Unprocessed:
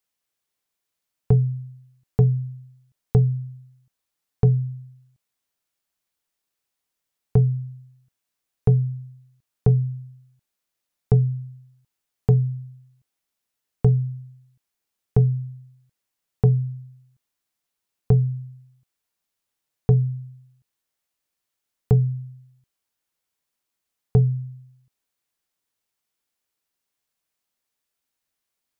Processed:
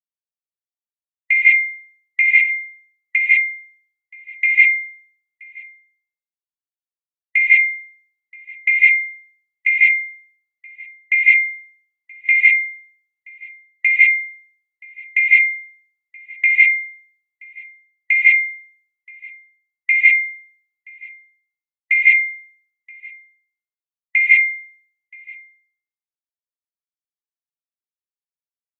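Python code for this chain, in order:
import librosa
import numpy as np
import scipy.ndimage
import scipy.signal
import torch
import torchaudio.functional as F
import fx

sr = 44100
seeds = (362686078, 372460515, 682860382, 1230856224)

p1 = fx.band_swap(x, sr, width_hz=2000)
p2 = p1 + fx.echo_single(p1, sr, ms=976, db=-12.5, dry=0)
p3 = fx.rev_gated(p2, sr, seeds[0], gate_ms=230, shape='rising', drr_db=-5.0)
p4 = fx.band_widen(p3, sr, depth_pct=100)
y = p4 * librosa.db_to_amplitude(-1.0)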